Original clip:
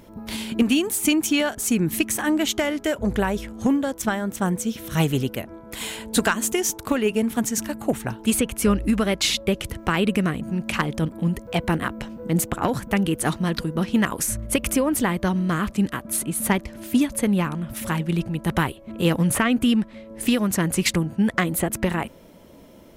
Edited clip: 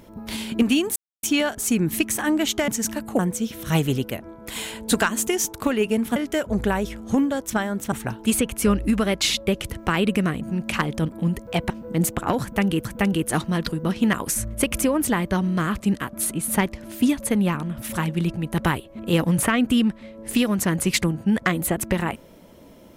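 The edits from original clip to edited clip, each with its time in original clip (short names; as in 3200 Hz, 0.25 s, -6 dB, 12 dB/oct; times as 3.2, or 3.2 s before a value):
0.96–1.23 mute
2.68–4.44 swap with 7.41–7.92
11.7–12.05 cut
12.77–13.2 loop, 2 plays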